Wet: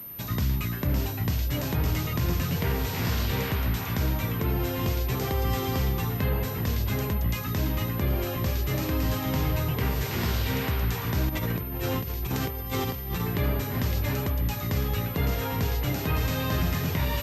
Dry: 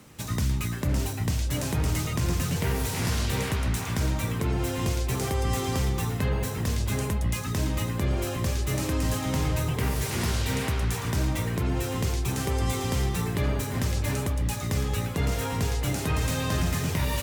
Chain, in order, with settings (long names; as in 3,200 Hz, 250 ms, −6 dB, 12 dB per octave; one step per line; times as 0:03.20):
0:11.29–0:13.20: compressor whose output falls as the input rises −29 dBFS, ratio −0.5
switching amplifier with a slow clock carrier 13,000 Hz